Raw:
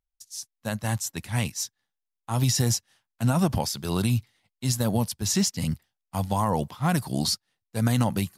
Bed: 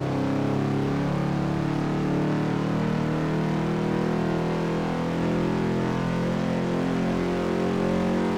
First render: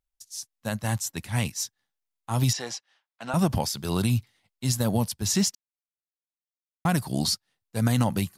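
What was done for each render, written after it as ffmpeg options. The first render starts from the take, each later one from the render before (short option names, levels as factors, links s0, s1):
-filter_complex "[0:a]asettb=1/sr,asplit=3[s0][s1][s2];[s0]atrim=end=2.534[s3];[s1]atrim=start=2.53:end=3.34,asetpts=PTS-STARTPTS,afade=t=in:d=0.004:c=qsin,afade=t=out:st=0.806:d=0.004:c=qsin,highpass=540,lowpass=4000[s4];[s2]atrim=start=3.336[s5];[s3][s4]acrossfade=d=0.004:c1=hsin:c2=qsin[s6];[s6][s5]acrossfade=d=0.004:c1=qsin:c2=hsin,asplit=3[s7][s8][s9];[s7]atrim=end=5.55,asetpts=PTS-STARTPTS,afade=t=out:st=5.546:d=0.004:c=hsin[s10];[s8]atrim=start=5.55:end=6.85,asetpts=PTS-STARTPTS,volume=0[s11];[s9]atrim=start=6.85,asetpts=PTS-STARTPTS,afade=t=in:d=0.004:c=hsin[s12];[s10][s11][s12]concat=n=3:v=0:a=1"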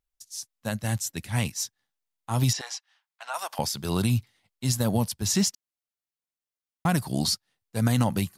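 -filter_complex "[0:a]asettb=1/sr,asplit=3[s0][s1][s2];[s0]atrim=end=0.714[s3];[s1]atrim=start=0.71:end=1.3,asetpts=PTS-STARTPTS,afade=t=in:d=0.004:c=qsin,afade=t=out:st=0.586:d=0.004:c=qsin,equalizer=f=1000:t=o:w=0.77:g=-7[s4];[s2]atrim=start=1.296[s5];[s3][s4]acrossfade=d=0.004:c1=hsin:c2=qsin[s6];[s6][s5]acrossfade=d=0.004:c1=qsin:c2=hsin,asettb=1/sr,asplit=3[s7][s8][s9];[s7]atrim=end=2.614[s10];[s8]atrim=start=2.61:end=3.59,asetpts=PTS-STARTPTS,afade=t=in:d=0.004:c=qsin,afade=t=out:st=0.976:d=0.004:c=qsin,highpass=f=740:w=0.5412,highpass=f=740:w=1.3066[s11];[s9]atrim=start=3.586[s12];[s10][s11]acrossfade=d=0.004:c1=hsin:c2=qsin[s13];[s13][s12]acrossfade=d=0.004:c1=qsin:c2=hsin"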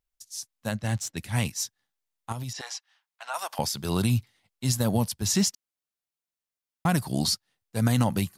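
-filter_complex "[0:a]asettb=1/sr,asplit=3[s0][s1][s2];[s0]atrim=end=0.714[s3];[s1]atrim=start=0.71:end=1.17,asetpts=PTS-STARTPTS,afade=t=in:d=0.004:c=qsin,afade=t=out:st=0.456:d=0.004:c=qsin,adynamicsmooth=sensitivity=6.5:basefreq=5900[s4];[s2]atrim=start=1.166[s5];[s3][s4]acrossfade=d=0.004:c1=hsin:c2=qsin[s6];[s6][s5]acrossfade=d=0.004:c1=qsin:c2=hsin,asettb=1/sr,asplit=3[s7][s8][s9];[s7]atrim=end=2.324[s10];[s8]atrim=start=2.32:end=2.75,asetpts=PTS-STARTPTS,afade=t=in:d=0.004:c=qsin,afade=t=out:st=0.426:d=0.004:c=qsin,acompressor=threshold=0.0282:ratio=10:attack=3.2:release=140:knee=1:detection=peak[s11];[s9]atrim=start=2.746[s12];[s10][s11]acrossfade=d=0.004:c1=hsin:c2=qsin[s13];[s13][s12]acrossfade=d=0.004:c1=qsin:c2=hsin"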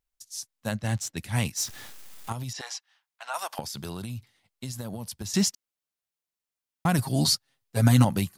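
-filter_complex "[0:a]asettb=1/sr,asplit=3[s0][s1][s2];[s0]atrim=end=1.574[s3];[s1]atrim=start=1.57:end=2.3,asetpts=PTS-STARTPTS,afade=t=in:d=0.004:c=qsin,afade=t=out:st=0.726:d=0.004:c=qsin,aeval=exprs='val(0)+0.5*0.015*sgn(val(0))':c=same[s4];[s2]atrim=start=2.296[s5];[s3][s4]acrossfade=d=0.004:c1=hsin:c2=qsin[s6];[s6][s5]acrossfade=d=0.004:c1=qsin:c2=hsin,asettb=1/sr,asplit=3[s7][s8][s9];[s7]atrim=end=3.594[s10];[s8]atrim=start=3.59:end=5.34,asetpts=PTS-STARTPTS,afade=t=in:d=0.004:c=qsin,afade=t=out:st=1.746:d=0.004:c=qsin,acompressor=threshold=0.0282:ratio=16:attack=3.2:release=140:knee=1:detection=peak[s11];[s9]atrim=start=5.336[s12];[s10][s11]acrossfade=d=0.004:c1=hsin:c2=qsin[s13];[s13][s12]acrossfade=d=0.004:c1=qsin:c2=hsin,asettb=1/sr,asplit=3[s14][s15][s16];[s14]atrim=end=6.984[s17];[s15]atrim=start=6.98:end=8.05,asetpts=PTS-STARTPTS,afade=t=in:d=0.004:c=qsin,afade=t=out:st=1.066:d=0.004:c=qsin,aecho=1:1:7.4:0.94,atrim=end_sample=47187[s18];[s16]atrim=start=8.046[s19];[s17][s18]acrossfade=d=0.004:c1=hsin:c2=qsin[s20];[s20][s19]acrossfade=d=0.004:c1=qsin:c2=hsin"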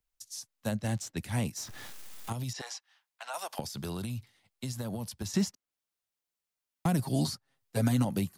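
-filter_complex "[0:a]acrossover=split=150|740|1800|5400[s0][s1][s2][s3][s4];[s0]acompressor=threshold=0.0141:ratio=4[s5];[s1]acompressor=threshold=0.0501:ratio=4[s6];[s2]acompressor=threshold=0.00398:ratio=4[s7];[s3]acompressor=threshold=0.00501:ratio=4[s8];[s4]acompressor=threshold=0.00631:ratio=4[s9];[s5][s6][s7][s8][s9]amix=inputs=5:normalize=0"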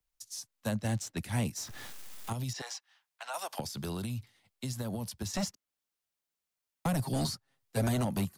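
-filter_complex "[0:a]acrossover=split=120|570|4800[s0][s1][s2][s3];[s1]aeval=exprs='0.0398*(abs(mod(val(0)/0.0398+3,4)-2)-1)':c=same[s4];[s3]acrusher=bits=5:mode=log:mix=0:aa=0.000001[s5];[s0][s4][s2][s5]amix=inputs=4:normalize=0"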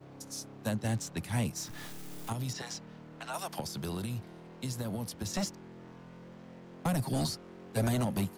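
-filter_complex "[1:a]volume=0.0562[s0];[0:a][s0]amix=inputs=2:normalize=0"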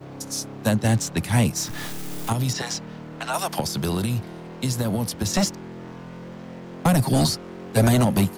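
-af "volume=3.98"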